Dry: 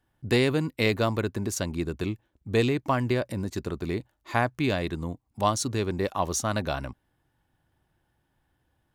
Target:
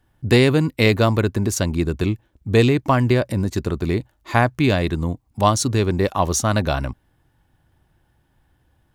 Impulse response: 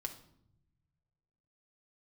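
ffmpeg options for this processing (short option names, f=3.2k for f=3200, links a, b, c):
-af "lowshelf=f=130:g=6.5,volume=7dB"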